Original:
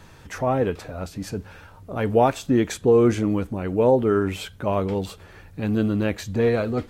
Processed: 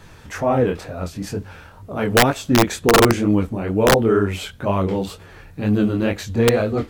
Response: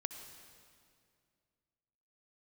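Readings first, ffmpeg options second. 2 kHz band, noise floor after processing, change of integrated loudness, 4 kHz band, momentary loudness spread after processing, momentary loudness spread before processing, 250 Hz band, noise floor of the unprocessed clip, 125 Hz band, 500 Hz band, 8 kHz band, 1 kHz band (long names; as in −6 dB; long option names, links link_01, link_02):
+10.0 dB, −44 dBFS, +3.5 dB, +12.0 dB, 14 LU, 15 LU, +3.5 dB, −47 dBFS, +4.0 dB, +2.0 dB, +11.0 dB, +5.0 dB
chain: -af "flanger=delay=19:depth=7.6:speed=2.1,aeval=exprs='(mod(4.22*val(0)+1,2)-1)/4.22':channel_layout=same,volume=6.5dB"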